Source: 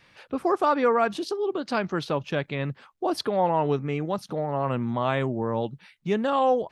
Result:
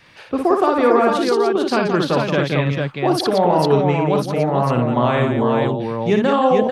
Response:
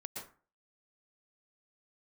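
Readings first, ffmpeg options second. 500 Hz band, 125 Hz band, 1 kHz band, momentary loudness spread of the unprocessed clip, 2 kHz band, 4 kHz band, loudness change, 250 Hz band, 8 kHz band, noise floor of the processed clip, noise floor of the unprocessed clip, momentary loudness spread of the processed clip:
+9.0 dB, +10.5 dB, +7.0 dB, 9 LU, +8.5 dB, +9.5 dB, +9.0 dB, +10.0 dB, +10.0 dB, −39 dBFS, −60 dBFS, 4 LU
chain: -filter_complex "[0:a]acrossover=split=440[link_01][link_02];[link_02]acompressor=threshold=-24dB:ratio=6[link_03];[link_01][link_03]amix=inputs=2:normalize=0,asplit=2[link_04][link_05];[link_05]aecho=0:1:57|173|447:0.596|0.422|0.631[link_06];[link_04][link_06]amix=inputs=2:normalize=0,volume=7.5dB"

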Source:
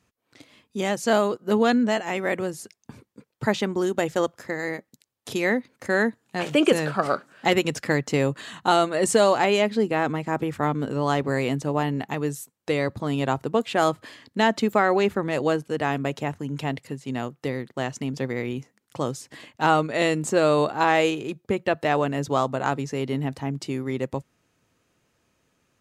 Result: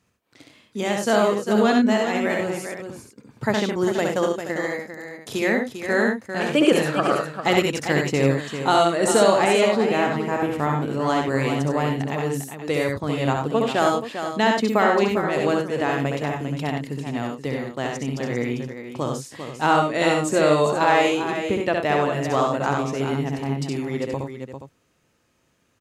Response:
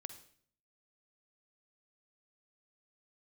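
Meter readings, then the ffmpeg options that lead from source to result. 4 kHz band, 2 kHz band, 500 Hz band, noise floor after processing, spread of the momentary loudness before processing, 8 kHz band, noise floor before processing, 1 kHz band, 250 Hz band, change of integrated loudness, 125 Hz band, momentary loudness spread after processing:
+2.5 dB, +2.5 dB, +2.5 dB, −66 dBFS, 11 LU, +2.5 dB, −74 dBFS, +2.5 dB, +2.5 dB, +2.5 dB, +2.5 dB, 11 LU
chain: -af "aecho=1:1:66|95|398|476:0.668|0.398|0.376|0.237"

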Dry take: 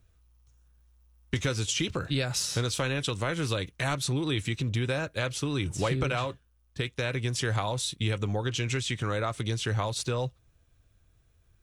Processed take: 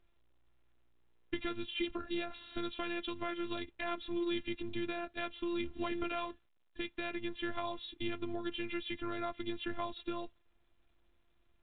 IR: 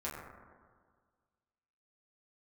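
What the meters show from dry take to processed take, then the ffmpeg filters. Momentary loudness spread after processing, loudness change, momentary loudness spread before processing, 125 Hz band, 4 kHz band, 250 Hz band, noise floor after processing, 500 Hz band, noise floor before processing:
5 LU, −9.5 dB, 3 LU, −25.0 dB, −10.5 dB, −4.5 dB, −72 dBFS, −8.0 dB, −66 dBFS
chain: -af "equalizer=frequency=200:width_type=o:width=0.69:gain=10,afftfilt=real='hypot(re,im)*cos(PI*b)':imag='0':win_size=512:overlap=0.75,volume=-4.5dB" -ar 8000 -c:a pcm_mulaw

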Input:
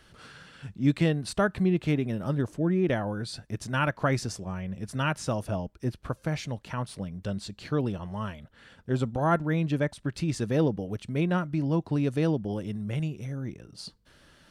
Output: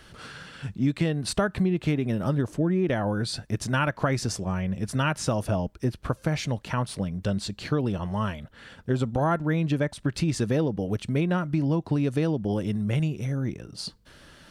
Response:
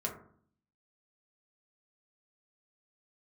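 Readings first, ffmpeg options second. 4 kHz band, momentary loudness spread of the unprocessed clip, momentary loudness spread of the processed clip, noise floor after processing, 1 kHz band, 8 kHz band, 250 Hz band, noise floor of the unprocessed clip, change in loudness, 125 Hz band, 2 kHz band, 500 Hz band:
+4.5 dB, 11 LU, 6 LU, −55 dBFS, +1.5 dB, +5.5 dB, +2.0 dB, −60 dBFS, +2.0 dB, +2.5 dB, +1.5 dB, +1.5 dB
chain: -af "acompressor=threshold=-27dB:ratio=6,volume=6.5dB"

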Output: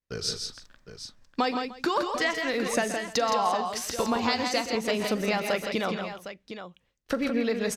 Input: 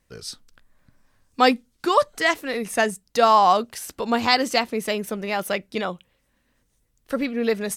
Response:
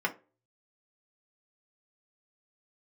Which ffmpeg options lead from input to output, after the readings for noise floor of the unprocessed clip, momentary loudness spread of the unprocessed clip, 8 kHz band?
−69 dBFS, 14 LU, −0.5 dB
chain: -filter_complex "[0:a]agate=range=-33dB:threshold=-52dB:ratio=3:detection=peak,highshelf=frequency=7800:width_type=q:width=1.5:gain=-7,acompressor=threshold=-30dB:ratio=6,asplit=2[link_01][link_02];[link_02]aecho=0:1:41|123|134|166|301|759:0.141|0.2|0.224|0.501|0.106|0.282[link_03];[link_01][link_03]amix=inputs=2:normalize=0,volume=5dB"

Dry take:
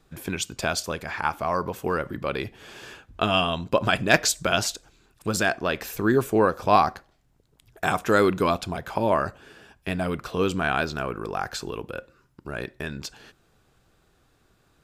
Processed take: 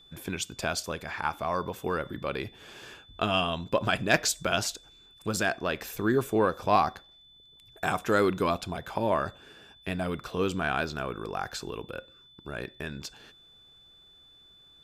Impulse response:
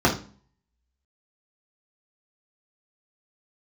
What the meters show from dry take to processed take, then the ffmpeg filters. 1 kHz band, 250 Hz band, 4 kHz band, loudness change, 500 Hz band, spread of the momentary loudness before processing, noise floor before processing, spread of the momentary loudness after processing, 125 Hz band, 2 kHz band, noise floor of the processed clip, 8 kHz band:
−4.5 dB, −4.5 dB, −4.0 dB, −4.5 dB, −4.5 dB, 16 LU, −64 dBFS, 16 LU, −4.0 dB, −4.5 dB, −57 dBFS, −4.5 dB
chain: -filter_complex "[0:a]aeval=exprs='val(0)+0.00316*sin(2*PI*3500*n/s)':channel_layout=same,asplit=2[link_01][link_02];[link_02]asoftclip=type=tanh:threshold=-13dB,volume=-10dB[link_03];[link_01][link_03]amix=inputs=2:normalize=0,volume=-6.5dB"

